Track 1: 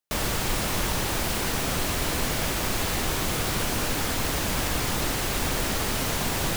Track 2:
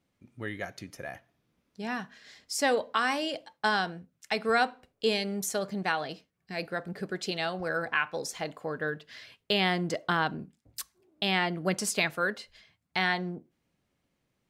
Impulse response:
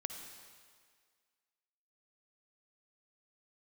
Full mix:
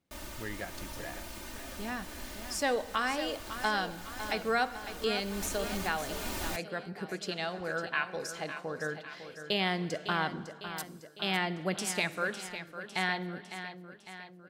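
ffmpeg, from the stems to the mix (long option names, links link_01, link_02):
-filter_complex "[0:a]aecho=1:1:3.3:0.97,volume=-12.5dB,afade=type=in:start_time=5.14:duration=0.44:silence=0.421697[link_01];[1:a]volume=-6.5dB,asplit=4[link_02][link_03][link_04][link_05];[link_03]volume=-7dB[link_06];[link_04]volume=-8dB[link_07];[link_05]apad=whole_len=289634[link_08];[link_01][link_08]sidechaincompress=threshold=-37dB:ratio=8:attack=16:release=513[link_09];[2:a]atrim=start_sample=2205[link_10];[link_06][link_10]afir=irnorm=-1:irlink=0[link_11];[link_07]aecho=0:1:554|1108|1662|2216|2770|3324|3878|4432:1|0.55|0.303|0.166|0.0915|0.0503|0.0277|0.0152[link_12];[link_09][link_02][link_11][link_12]amix=inputs=4:normalize=0"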